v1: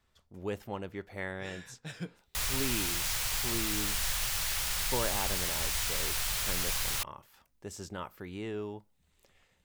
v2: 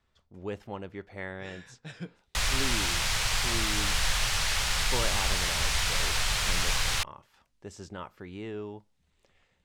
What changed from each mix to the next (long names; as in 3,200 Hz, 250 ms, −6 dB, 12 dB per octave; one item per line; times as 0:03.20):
background +8.0 dB
master: add high-frequency loss of the air 61 metres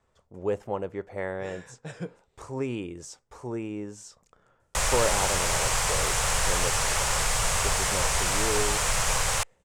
background: entry +2.40 s
master: add octave-band graphic EQ 125/500/1,000/4,000/8,000 Hz +4/+10/+5/−6/+9 dB